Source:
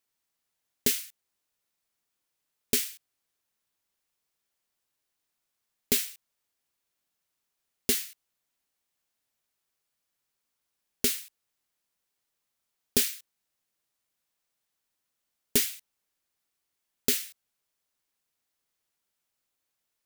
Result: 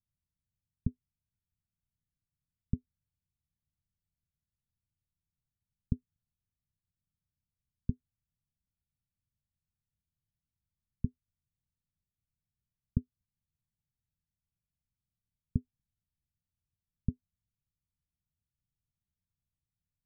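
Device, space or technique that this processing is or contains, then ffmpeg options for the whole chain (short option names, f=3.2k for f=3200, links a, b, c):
the neighbour's flat through the wall: -af "lowpass=f=160:w=0.5412,lowpass=f=160:w=1.3066,equalizer=f=84:t=o:w=0.8:g=4,volume=10.5dB"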